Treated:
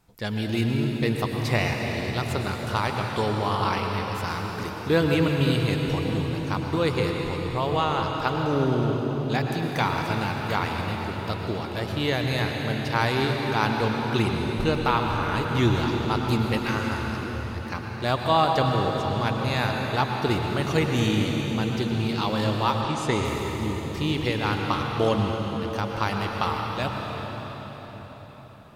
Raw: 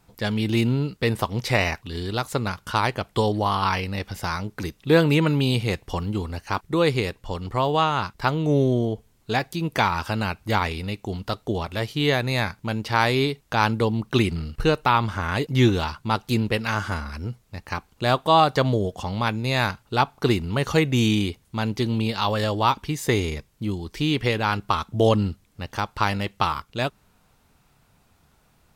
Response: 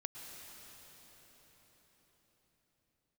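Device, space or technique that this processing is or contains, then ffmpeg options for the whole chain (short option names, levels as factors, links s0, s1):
cathedral: -filter_complex "[1:a]atrim=start_sample=2205[s0];[0:a][s0]afir=irnorm=-1:irlink=0,asettb=1/sr,asplit=3[s1][s2][s3];[s1]atrim=end=22.814[s4];[s2]atrim=start=22.81:end=23.25,asetpts=PTS-STARTPTS,afade=t=in:d=0.004:c=qsin,afade=t=out:st=0.436:d=0.004:c=qsin,lowpass=f=9700:w=0.5412,lowpass=f=9700:w=1.3066[s5];[s3]atrim=start=23.246[s6];[s4][s5]acrossfade=d=0.004:c1=hsin:c2=qsin[s7];[s7][s6]acrossfade=d=0.004:c1=qsin:c2=hsin"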